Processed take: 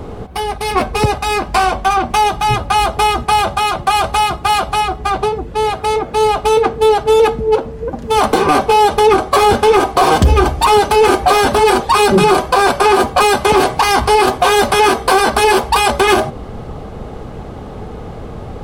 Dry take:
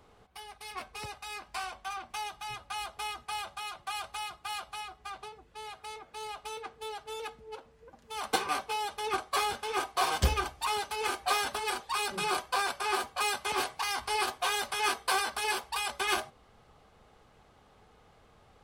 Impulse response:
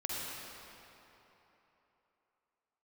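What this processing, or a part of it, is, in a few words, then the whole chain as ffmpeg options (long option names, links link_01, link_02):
mastering chain: -af "equalizer=frequency=360:width_type=o:width=2.4:gain=3,acompressor=threshold=-32dB:ratio=3,asoftclip=type=tanh:threshold=-25.5dB,tiltshelf=frequency=680:gain=7.5,alimiter=level_in=28.5dB:limit=-1dB:release=50:level=0:latency=1,volume=-1dB"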